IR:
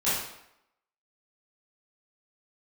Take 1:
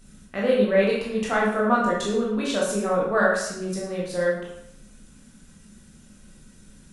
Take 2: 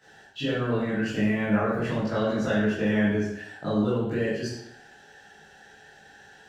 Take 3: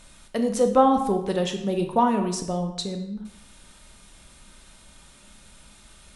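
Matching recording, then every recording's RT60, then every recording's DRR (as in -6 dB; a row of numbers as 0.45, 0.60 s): 2; 0.80, 0.80, 0.80 s; -5.0, -13.0, 5.0 dB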